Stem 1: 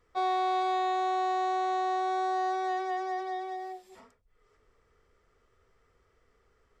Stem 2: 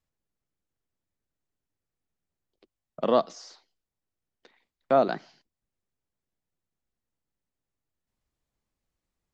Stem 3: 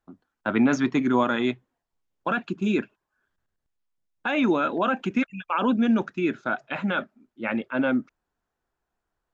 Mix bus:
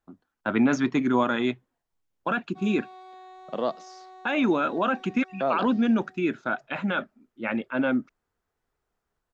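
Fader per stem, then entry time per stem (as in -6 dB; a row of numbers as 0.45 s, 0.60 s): -18.0 dB, -5.5 dB, -1.0 dB; 2.40 s, 0.50 s, 0.00 s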